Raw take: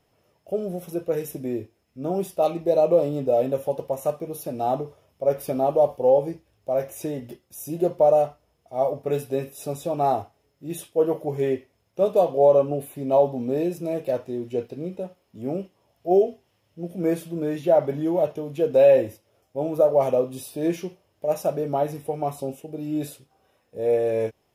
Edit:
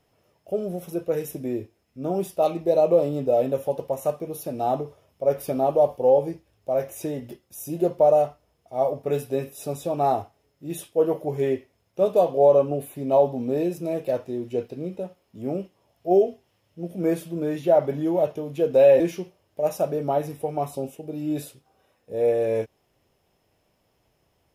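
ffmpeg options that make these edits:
-filter_complex "[0:a]asplit=2[a][b];[a]atrim=end=19.002[c];[b]atrim=start=20.648[d];[c][d]acrossfade=d=0.004:c1=hsin:c2=hsin"

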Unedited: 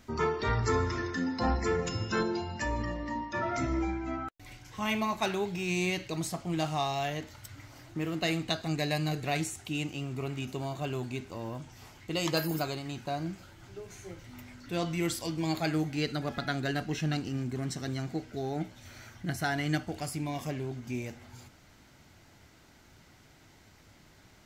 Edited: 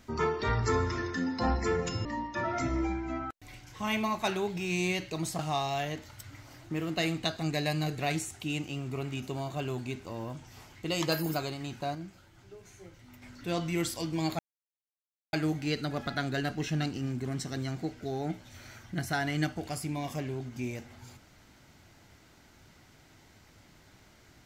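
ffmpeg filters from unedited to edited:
-filter_complex "[0:a]asplit=6[a][b][c][d][e][f];[a]atrim=end=2.052[g];[b]atrim=start=3.028:end=6.372[h];[c]atrim=start=6.638:end=13.202[i];[d]atrim=start=13.198:end=14.472,asetpts=PTS-STARTPTS,volume=-6dB[j];[e]atrim=start=14.468:end=15.64,asetpts=PTS-STARTPTS,afade=t=out:st=1.168:d=0.004:c=hsin,apad=pad_dur=0.94[k];[f]atrim=start=15.64,asetpts=PTS-STARTPTS,afade=t=in:d=0.004:c=hsin[l];[g][h]acrossfade=d=0.004:c1=hsin:c2=hsin[m];[m][i]acrossfade=d=0.004:c1=hsin:c2=hsin[n];[n][j]acrossfade=d=0.004:c1=hsin:c2=hsin[o];[k][l]concat=n=2:v=0:a=1[p];[o][p]acrossfade=d=0.004:c1=hsin:c2=hsin"

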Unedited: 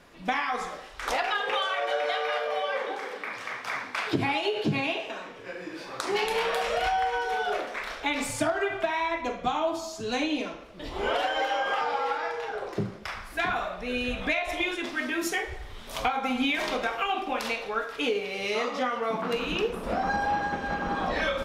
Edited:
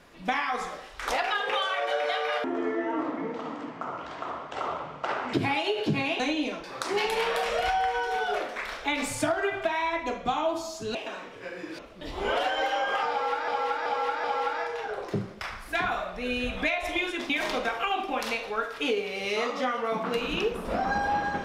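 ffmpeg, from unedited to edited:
-filter_complex "[0:a]asplit=11[a][b][c][d][e][f][g][h][i][j][k];[a]atrim=end=2.444[l];[b]atrim=start=2.44:end=4.12,asetpts=PTS-STARTPTS,asetrate=25578,aresample=44100[m];[c]atrim=start=4.116:end=4.982[n];[d]atrim=start=10.128:end=10.572[o];[e]atrim=start=5.818:end=10.132[p];[f]atrim=start=4.978:end=5.822[q];[g]atrim=start=10.568:end=12.262[r];[h]atrim=start=11.878:end=12.262[s];[i]atrim=start=11.878:end=12.262[t];[j]atrim=start=11.878:end=14.942[u];[k]atrim=start=16.478[v];[l][m]acrossfade=d=0.004:c1=hsin:c2=hsin[w];[w][n]acrossfade=d=0.004:c1=hsin:c2=hsin[x];[x][o]acrossfade=d=0.004:c1=hsin:c2=hsin[y];[y][p]acrossfade=d=0.004:c1=hsin:c2=hsin[z];[z][q]acrossfade=d=0.004:c1=hsin:c2=hsin[aa];[aa][r]acrossfade=d=0.004:c1=hsin:c2=hsin[ab];[ab][s]acrossfade=d=0.004:c1=hsin:c2=hsin[ac];[ac][t]acrossfade=d=0.004:c1=hsin:c2=hsin[ad];[ad][u]acrossfade=d=0.004:c1=hsin:c2=hsin[ae];[ae][v]acrossfade=d=0.004:c1=hsin:c2=hsin"

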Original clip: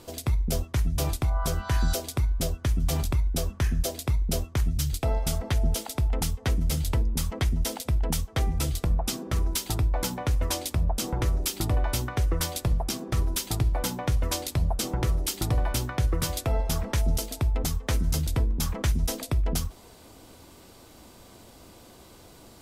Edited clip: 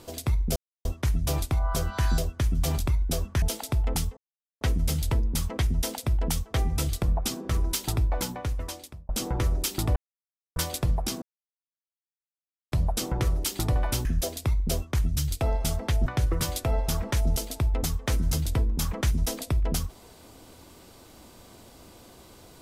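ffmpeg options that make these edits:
-filter_complex "[0:a]asplit=12[a][b][c][d][e][f][g][h][i][j][k][l];[a]atrim=end=0.56,asetpts=PTS-STARTPTS,afade=t=out:st=0.556:d=0.004:c=hsin,apad=pad_dur=0.29[m];[b]atrim=start=0.56:end=1.892,asetpts=PTS-STARTPTS,afade=t=in:d=0.004:c=hsin[n];[c]atrim=start=2.428:end=3.672[o];[d]atrim=start=5.678:end=6.43,asetpts=PTS-STARTPTS,afade=t=out:st=0.748:d=0.004:c=hsin,apad=pad_dur=0.44[p];[e]atrim=start=6.43:end=10.91,asetpts=PTS-STARTPTS,afade=t=in:d=0.004:c=hsin,afade=t=out:st=3.49:d=0.99[q];[f]atrim=start=10.91:end=11.78,asetpts=PTS-STARTPTS,afade=t=in:d=0.004:c=hsin,afade=t=out:st=0.866:d=0.004:c=hsin[r];[g]atrim=start=11.78:end=12.38,asetpts=PTS-STARTPTS,volume=0[s];[h]atrim=start=12.38:end=13.04,asetpts=PTS-STARTPTS,afade=t=in:d=0.004:c=hsin,afade=t=out:st=0.656:d=0.004:c=hsin[t];[i]atrim=start=13.04:end=14.54,asetpts=PTS-STARTPTS,volume=0[u];[j]atrim=start=14.54:end=15.872,asetpts=PTS-STARTPTS,afade=t=in:d=0.004:c=hsin[v];[k]atrim=start=3.668:end=5.682[w];[l]atrim=start=15.868[x];[m][n]concat=n=2:v=0:a=1[y];[y][o]acrossfade=d=0.004:c1=hsin:c2=hsin[z];[p][q][r][s][t][u][v]concat=n=7:v=0:a=1[aa];[z][aa]acrossfade=d=0.004:c1=hsin:c2=hsin[ab];[ab][w]acrossfade=d=0.004:c1=hsin:c2=hsin[ac];[ac][x]acrossfade=d=0.004:c1=hsin:c2=hsin"

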